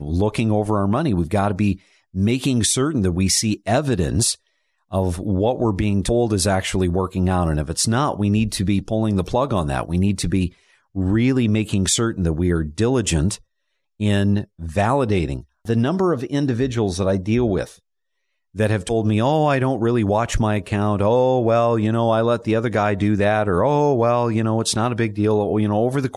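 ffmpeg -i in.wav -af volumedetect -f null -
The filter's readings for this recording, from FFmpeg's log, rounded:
mean_volume: -19.6 dB
max_volume: -7.6 dB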